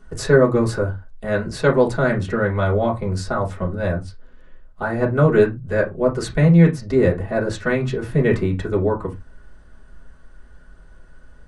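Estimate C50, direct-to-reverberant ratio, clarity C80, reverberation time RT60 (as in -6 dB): 15.5 dB, -4.0 dB, 25.0 dB, no single decay rate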